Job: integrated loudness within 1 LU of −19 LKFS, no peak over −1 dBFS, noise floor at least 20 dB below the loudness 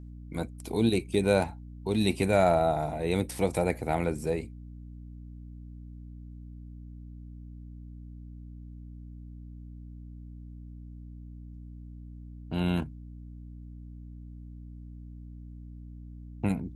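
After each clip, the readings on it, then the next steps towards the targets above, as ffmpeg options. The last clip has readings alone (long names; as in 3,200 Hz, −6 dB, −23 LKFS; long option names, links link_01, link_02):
mains hum 60 Hz; hum harmonics up to 300 Hz; level of the hum −41 dBFS; integrated loudness −28.5 LKFS; sample peak −10.5 dBFS; target loudness −19.0 LKFS
→ -af "bandreject=frequency=60:width_type=h:width=6,bandreject=frequency=120:width_type=h:width=6,bandreject=frequency=180:width_type=h:width=6,bandreject=frequency=240:width_type=h:width=6,bandreject=frequency=300:width_type=h:width=6"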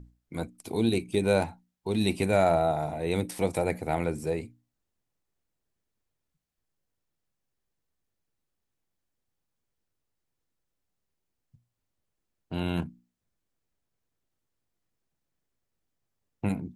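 mains hum none found; integrated loudness −28.5 LKFS; sample peak −11.5 dBFS; target loudness −19.0 LKFS
→ -af "volume=9.5dB"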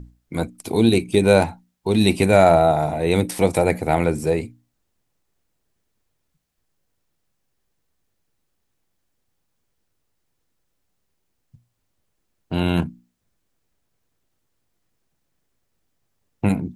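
integrated loudness −19.0 LKFS; sample peak −2.0 dBFS; background noise floor −73 dBFS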